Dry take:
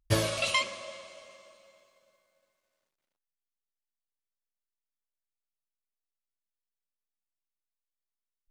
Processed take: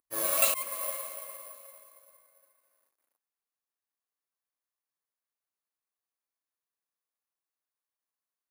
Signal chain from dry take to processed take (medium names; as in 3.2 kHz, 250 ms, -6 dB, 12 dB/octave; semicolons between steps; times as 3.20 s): slow attack 308 ms; cabinet simulation 280–5200 Hz, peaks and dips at 280 Hz +4 dB, 490 Hz +3 dB, 760 Hz +4 dB, 1.1 kHz +8 dB, 1.7 kHz +4 dB, 3.2 kHz -5 dB; careless resampling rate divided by 4×, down none, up zero stuff